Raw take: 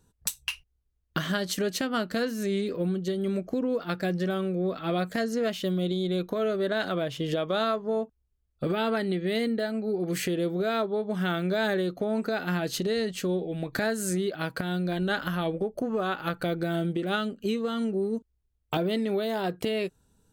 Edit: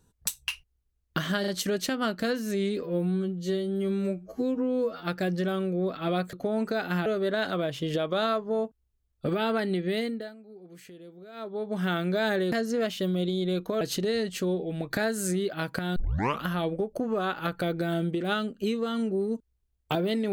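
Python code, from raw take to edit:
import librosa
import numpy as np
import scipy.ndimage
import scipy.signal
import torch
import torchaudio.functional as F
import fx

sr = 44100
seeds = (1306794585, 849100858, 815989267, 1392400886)

y = fx.edit(x, sr, fx.stutter(start_s=1.4, slice_s=0.04, count=3),
    fx.stretch_span(start_s=2.75, length_s=1.1, factor=2.0),
    fx.swap(start_s=5.15, length_s=1.29, other_s=11.9, other_length_s=0.73),
    fx.fade_down_up(start_s=9.28, length_s=1.89, db=-19.5, fade_s=0.47),
    fx.tape_start(start_s=14.78, length_s=0.49), tone=tone)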